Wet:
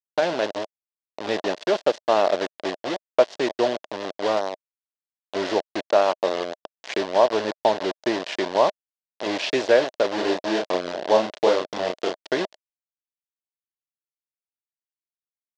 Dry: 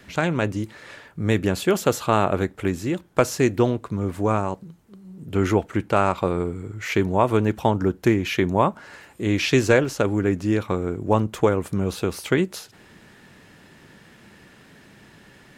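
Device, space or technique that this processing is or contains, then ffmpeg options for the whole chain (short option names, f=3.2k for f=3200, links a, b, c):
hand-held game console: -filter_complex "[0:a]acrusher=bits=3:mix=0:aa=0.000001,highpass=410,equalizer=f=620:t=q:w=4:g=9,equalizer=f=1.3k:t=q:w=4:g=-7,equalizer=f=2.3k:t=q:w=4:g=-6,lowpass=f=5.1k:w=0.5412,lowpass=f=5.1k:w=1.3066,asettb=1/sr,asplit=3[a][b][c];[a]atrim=end=10.154[d];[b]atrim=start=10.15:end=12.28,asetpts=PTS-STARTPTS,afade=t=in:d=0.004:c=qsin,afade=t=out:st=2.126:d=0.004:c=qsin,asplit=2[e][f];[f]adelay=33,volume=-2.5dB[g];[e][g]amix=inputs=2:normalize=0,atrim=end_sample=93933[h];[c]atrim=start=12.276[i];[d][h]acrossfade=d=0.004:c1=hsin:c2=qsin[j];[j][i]acrossfade=d=0.004:c1=qsin:c2=hsin,volume=-1dB"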